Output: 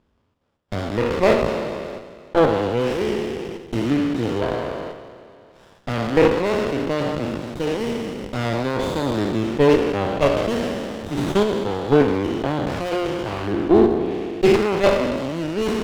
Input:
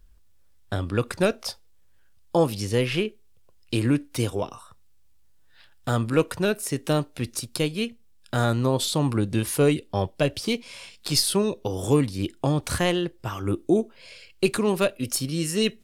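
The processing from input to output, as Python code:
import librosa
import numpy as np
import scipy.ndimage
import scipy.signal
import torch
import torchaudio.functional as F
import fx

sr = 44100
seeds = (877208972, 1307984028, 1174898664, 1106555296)

p1 = fx.spec_trails(x, sr, decay_s=2.01)
p2 = scipy.signal.sosfilt(scipy.signal.butter(2, 160.0, 'highpass', fs=sr, output='sos'), p1)
p3 = fx.level_steps(p2, sr, step_db=18)
p4 = p2 + F.gain(torch.from_numpy(p3), -0.5).numpy()
p5 = scipy.signal.sosfilt(scipy.signal.butter(16, 4000.0, 'lowpass', fs=sr, output='sos'), p4)
y = fx.running_max(p5, sr, window=17)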